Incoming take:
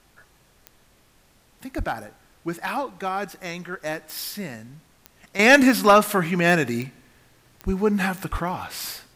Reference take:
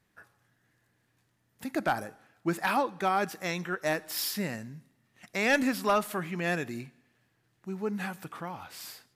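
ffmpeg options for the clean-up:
-filter_complex "[0:a]adeclick=t=4,asplit=3[a][b][c];[a]afade=t=out:st=1.77:d=0.02[d];[b]highpass=f=140:w=0.5412,highpass=f=140:w=1.3066,afade=t=in:st=1.77:d=0.02,afade=t=out:st=1.89:d=0.02[e];[c]afade=t=in:st=1.89:d=0.02[f];[d][e][f]amix=inputs=3:normalize=0,asplit=3[g][h][i];[g]afade=t=out:st=7.65:d=0.02[j];[h]highpass=f=140:w=0.5412,highpass=f=140:w=1.3066,afade=t=in:st=7.65:d=0.02,afade=t=out:st=7.77:d=0.02[k];[i]afade=t=in:st=7.77:d=0.02[l];[j][k][l]amix=inputs=3:normalize=0,asplit=3[m][n][o];[m]afade=t=out:st=8.31:d=0.02[p];[n]highpass=f=140:w=0.5412,highpass=f=140:w=1.3066,afade=t=in:st=8.31:d=0.02,afade=t=out:st=8.43:d=0.02[q];[o]afade=t=in:st=8.43:d=0.02[r];[p][q][r]amix=inputs=3:normalize=0,agate=range=-21dB:threshold=-50dB,asetnsamples=n=441:p=0,asendcmd='5.39 volume volume -11.5dB',volume=0dB"

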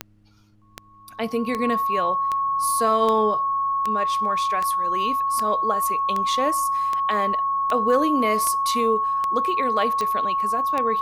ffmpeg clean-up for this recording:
-af "adeclick=t=4,bandreject=f=104.1:t=h:w=4,bandreject=f=208.2:t=h:w=4,bandreject=f=312.3:t=h:w=4,bandreject=f=1.1k:w=30,agate=range=-21dB:threshold=-35dB"

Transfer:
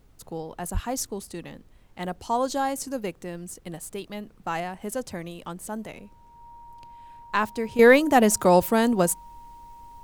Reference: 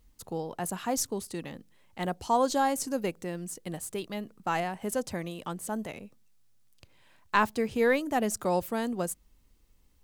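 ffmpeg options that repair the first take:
-filter_complex "[0:a]bandreject=f=940:w=30,asplit=3[a][b][c];[a]afade=t=out:st=0.73:d=0.02[d];[b]highpass=f=140:w=0.5412,highpass=f=140:w=1.3066,afade=t=in:st=0.73:d=0.02,afade=t=out:st=0.85:d=0.02[e];[c]afade=t=in:st=0.85:d=0.02[f];[d][e][f]amix=inputs=3:normalize=0,agate=range=-21dB:threshold=-44dB,asetnsamples=n=441:p=0,asendcmd='7.79 volume volume -10dB',volume=0dB"

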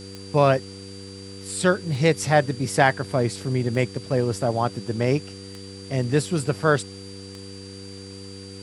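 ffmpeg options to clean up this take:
-af "adeclick=t=4,bandreject=f=97.4:t=h:w=4,bandreject=f=194.8:t=h:w=4,bandreject=f=292.2:t=h:w=4,bandreject=f=389.6:t=h:w=4,bandreject=f=487:t=h:w=4,bandreject=f=4.7k:w=30,afftdn=nr=28:nf=-39"

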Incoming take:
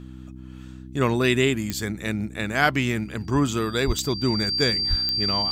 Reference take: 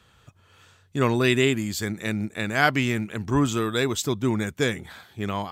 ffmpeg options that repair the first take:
-filter_complex "[0:a]adeclick=t=4,bandreject=f=63.7:t=h:w=4,bandreject=f=127.4:t=h:w=4,bandreject=f=191.1:t=h:w=4,bandreject=f=254.8:t=h:w=4,bandreject=f=318.5:t=h:w=4,bandreject=f=4.7k:w=30,asplit=3[a][b][c];[a]afade=t=out:st=3.86:d=0.02[d];[b]highpass=f=140:w=0.5412,highpass=f=140:w=1.3066,afade=t=in:st=3.86:d=0.02,afade=t=out:st=3.98:d=0.02[e];[c]afade=t=in:st=3.98:d=0.02[f];[d][e][f]amix=inputs=3:normalize=0,asplit=3[g][h][i];[g]afade=t=out:st=4.89:d=0.02[j];[h]highpass=f=140:w=0.5412,highpass=f=140:w=1.3066,afade=t=in:st=4.89:d=0.02,afade=t=out:st=5.01:d=0.02[k];[i]afade=t=in:st=5.01:d=0.02[l];[j][k][l]amix=inputs=3:normalize=0"

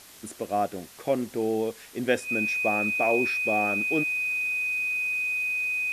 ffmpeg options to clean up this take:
-af "bandreject=f=2.5k:w=30,afwtdn=0.004"

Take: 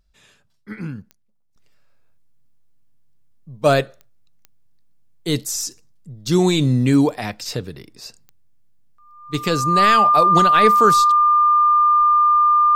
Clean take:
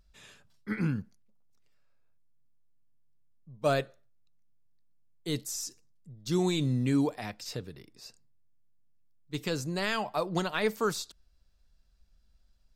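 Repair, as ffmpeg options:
-af "adeclick=t=4,bandreject=f=1.2k:w=30,asetnsamples=n=441:p=0,asendcmd='1.56 volume volume -11.5dB',volume=0dB"

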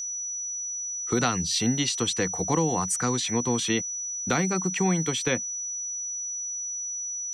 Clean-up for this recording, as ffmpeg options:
-af "bandreject=f=5.9k:w=30"

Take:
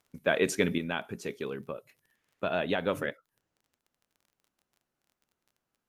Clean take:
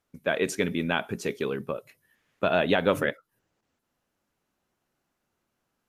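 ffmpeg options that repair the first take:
-af "adeclick=t=4,asetnsamples=n=441:p=0,asendcmd='0.78 volume volume 6.5dB',volume=0dB"

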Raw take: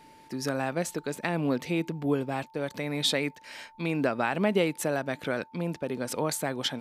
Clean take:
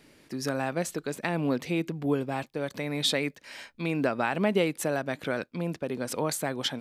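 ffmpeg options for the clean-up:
-af "bandreject=f=890:w=30"

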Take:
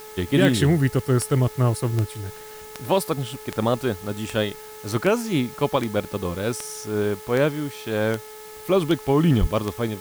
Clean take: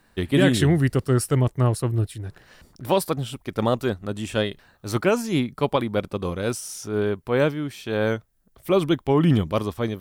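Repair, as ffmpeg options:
-filter_complex "[0:a]adeclick=t=4,bandreject=f=430:t=h:w=4,bandreject=f=860:t=h:w=4,bandreject=f=1.29k:t=h:w=4,bandreject=f=1.72k:t=h:w=4,bandreject=f=2.15k:t=h:w=4,asplit=3[a][b][c];[a]afade=t=out:st=9.4:d=0.02[d];[b]highpass=f=140:w=0.5412,highpass=f=140:w=1.3066,afade=t=in:st=9.4:d=0.02,afade=t=out:st=9.52:d=0.02[e];[c]afade=t=in:st=9.52:d=0.02[f];[d][e][f]amix=inputs=3:normalize=0,afftdn=nr=16:nf=-40"

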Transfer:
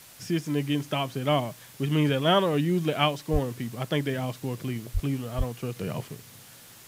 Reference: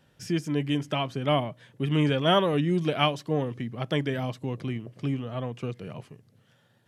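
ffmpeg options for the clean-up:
-filter_complex "[0:a]asplit=3[a][b][c];[a]afade=t=out:st=3.32:d=0.02[d];[b]highpass=f=140:w=0.5412,highpass=f=140:w=1.3066,afade=t=in:st=3.32:d=0.02,afade=t=out:st=3.44:d=0.02[e];[c]afade=t=in:st=3.44:d=0.02[f];[d][e][f]amix=inputs=3:normalize=0,asplit=3[g][h][i];[g]afade=t=out:st=4.93:d=0.02[j];[h]highpass=f=140:w=0.5412,highpass=f=140:w=1.3066,afade=t=in:st=4.93:d=0.02,afade=t=out:st=5.05:d=0.02[k];[i]afade=t=in:st=5.05:d=0.02[l];[j][k][l]amix=inputs=3:normalize=0,asplit=3[m][n][o];[m]afade=t=out:st=5.37:d=0.02[p];[n]highpass=f=140:w=0.5412,highpass=f=140:w=1.3066,afade=t=in:st=5.37:d=0.02,afade=t=out:st=5.49:d=0.02[q];[o]afade=t=in:st=5.49:d=0.02[r];[p][q][r]amix=inputs=3:normalize=0,afwtdn=0.0035,asetnsamples=n=441:p=0,asendcmd='5.76 volume volume -7dB',volume=0dB"

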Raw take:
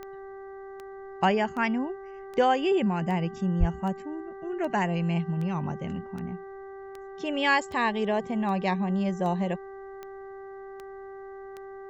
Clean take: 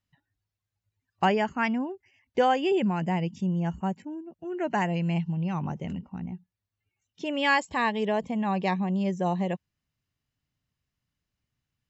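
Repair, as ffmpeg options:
-filter_complex "[0:a]adeclick=t=4,bandreject=f=390.1:t=h:w=4,bandreject=f=780.2:t=h:w=4,bandreject=f=1.1703k:t=h:w=4,bandreject=f=1.5604k:t=h:w=4,bandreject=f=1.9505k:t=h:w=4,asplit=3[a][b][c];[a]afade=t=out:st=3.59:d=0.02[d];[b]highpass=f=140:w=0.5412,highpass=f=140:w=1.3066,afade=t=in:st=3.59:d=0.02,afade=t=out:st=3.71:d=0.02[e];[c]afade=t=in:st=3.71:d=0.02[f];[d][e][f]amix=inputs=3:normalize=0,agate=range=-21dB:threshold=-34dB"

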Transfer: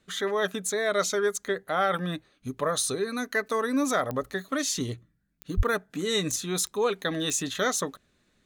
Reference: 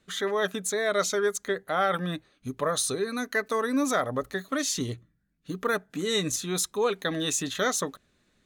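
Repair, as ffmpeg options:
-filter_complex "[0:a]adeclick=t=4,asplit=3[a][b][c];[a]afade=t=out:st=5.56:d=0.02[d];[b]highpass=f=140:w=0.5412,highpass=f=140:w=1.3066,afade=t=in:st=5.56:d=0.02,afade=t=out:st=5.68:d=0.02[e];[c]afade=t=in:st=5.68:d=0.02[f];[d][e][f]amix=inputs=3:normalize=0"

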